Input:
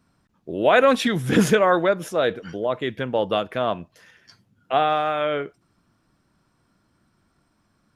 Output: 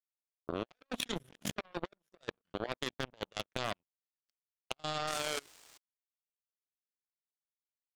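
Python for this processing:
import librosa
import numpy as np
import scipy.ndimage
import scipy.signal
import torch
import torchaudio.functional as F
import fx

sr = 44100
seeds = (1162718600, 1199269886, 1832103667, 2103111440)

y = fx.spec_quant(x, sr, step_db=15)
y = fx.peak_eq(y, sr, hz=3100.0, db=6.5, octaves=0.48)
y = fx.transient(y, sr, attack_db=6, sustain_db=-4)
y = fx.hum_notches(y, sr, base_hz=50, count=6)
y = fx.over_compress(y, sr, threshold_db=-22.0, ratio=-0.5)
y = fx.spec_paint(y, sr, seeds[0], shape='noise', start_s=5.07, length_s=0.71, low_hz=300.0, high_hz=9100.0, level_db=-29.0)
y = fx.power_curve(y, sr, exponent=3.0)
y = np.clip(y, -10.0 ** (-15.5 / 20.0), 10.0 ** (-15.5 / 20.0))
y = y * (1.0 - 0.6 / 2.0 + 0.6 / 2.0 * np.cos(2.0 * np.pi * 1.2 * (np.arange(len(y)) / sr)))
y = fx.level_steps(y, sr, step_db=24)
y = y * librosa.db_to_amplitude(12.0)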